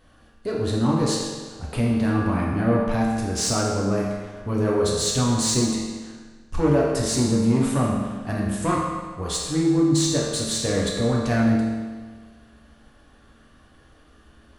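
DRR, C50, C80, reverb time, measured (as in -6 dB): -4.0 dB, 0.5 dB, 2.5 dB, 1.5 s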